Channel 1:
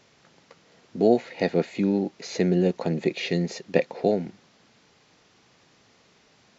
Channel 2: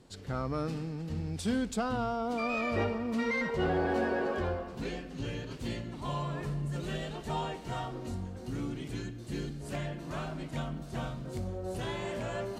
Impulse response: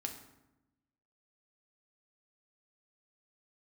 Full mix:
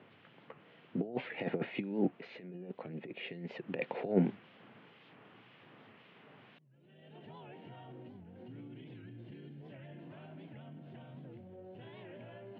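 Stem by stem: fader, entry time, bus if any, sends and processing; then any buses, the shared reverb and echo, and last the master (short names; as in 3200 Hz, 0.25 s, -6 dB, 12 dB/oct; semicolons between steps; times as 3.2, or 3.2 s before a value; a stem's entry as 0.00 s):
2.04 s -3.5 dB -> 2.41 s -13 dB -> 3.37 s -13 dB -> 3.77 s -0.5 dB, 0.00 s, no send, negative-ratio compressor -26 dBFS, ratio -0.5; harmonic tremolo 1.9 Hz, depth 50%, crossover 1800 Hz
-3.0 dB, 0.00 s, no send, compressor, threshold -37 dBFS, peak gain reduction 11 dB; limiter -38.5 dBFS, peak gain reduction 9.5 dB; bell 1200 Hz -12 dB 0.46 oct; auto duck -22 dB, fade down 0.30 s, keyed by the first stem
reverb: off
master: Chebyshev band-pass 110–3100 Hz, order 4; record warp 78 rpm, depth 160 cents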